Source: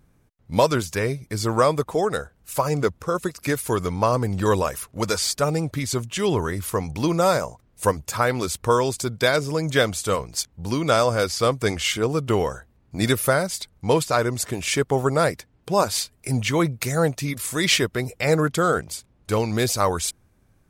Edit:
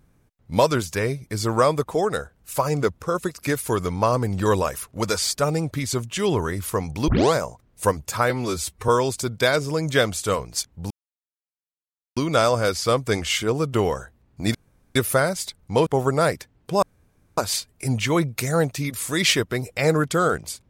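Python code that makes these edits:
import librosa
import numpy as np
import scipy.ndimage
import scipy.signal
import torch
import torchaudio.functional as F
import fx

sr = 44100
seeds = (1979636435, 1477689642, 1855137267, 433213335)

y = fx.edit(x, sr, fx.tape_start(start_s=7.08, length_s=0.26),
    fx.stretch_span(start_s=8.3, length_s=0.39, factor=1.5),
    fx.insert_silence(at_s=10.71, length_s=1.26),
    fx.insert_room_tone(at_s=13.09, length_s=0.41),
    fx.cut(start_s=14.0, length_s=0.85),
    fx.insert_room_tone(at_s=15.81, length_s=0.55), tone=tone)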